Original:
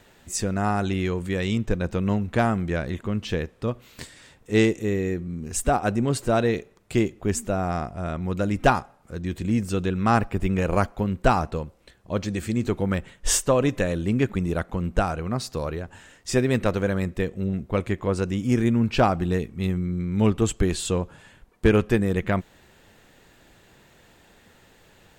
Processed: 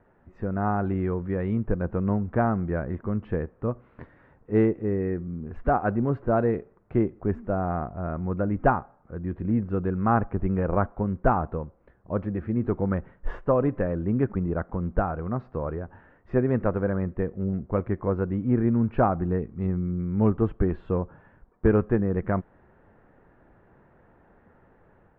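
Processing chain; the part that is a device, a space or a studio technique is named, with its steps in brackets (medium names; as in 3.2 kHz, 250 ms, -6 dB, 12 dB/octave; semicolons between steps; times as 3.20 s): 4.99–5.98 s: dynamic bell 2.2 kHz, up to +4 dB, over -40 dBFS, Q 0.71; action camera in a waterproof case (low-pass 1.5 kHz 24 dB/octave; level rider gain up to 4 dB; trim -5 dB; AAC 96 kbps 48 kHz)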